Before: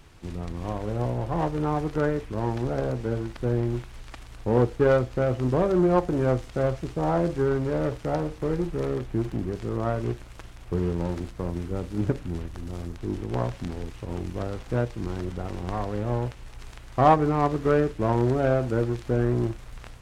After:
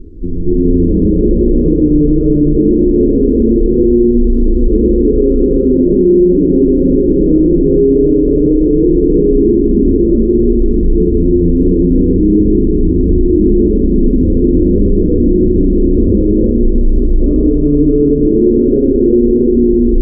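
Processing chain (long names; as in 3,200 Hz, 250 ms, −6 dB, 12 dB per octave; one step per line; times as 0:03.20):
downward compressor 10 to 1, threshold −35 dBFS, peak gain reduction 22.5 dB
convolution reverb RT60 3.0 s, pre-delay 184 ms, DRR −12.5 dB
pitch vibrato 0.33 Hz 13 cents
inverse Chebyshev low-pass filter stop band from 840 Hz, stop band 40 dB
phaser with its sweep stopped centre 300 Hz, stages 4
hum removal 53.43 Hz, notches 4
boost into a limiter +25.5 dB
level −1 dB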